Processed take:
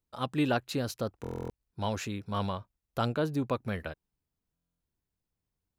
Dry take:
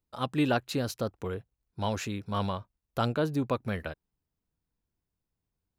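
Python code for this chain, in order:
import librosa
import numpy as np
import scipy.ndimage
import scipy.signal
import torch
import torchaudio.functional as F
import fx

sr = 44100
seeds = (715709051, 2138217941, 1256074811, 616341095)

y = fx.buffer_glitch(x, sr, at_s=(1.22, 4.53), block=1024, repeats=11)
y = y * 10.0 ** (-1.5 / 20.0)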